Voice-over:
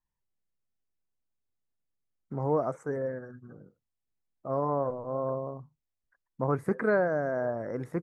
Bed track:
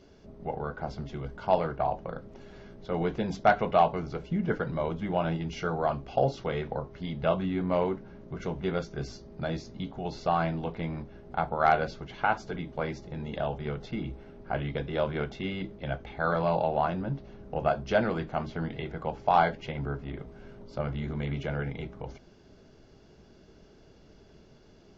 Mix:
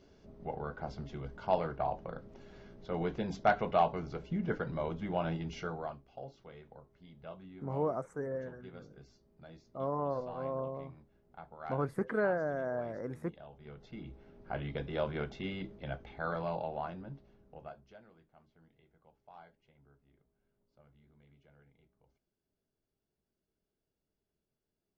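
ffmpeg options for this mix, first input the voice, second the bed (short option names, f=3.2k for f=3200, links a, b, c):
-filter_complex "[0:a]adelay=5300,volume=-5.5dB[a];[1:a]volume=10dB,afade=t=out:st=5.51:d=0.52:silence=0.16788,afade=t=in:st=13.52:d=1.29:silence=0.16788,afade=t=out:st=15.49:d=2.49:silence=0.0446684[b];[a][b]amix=inputs=2:normalize=0"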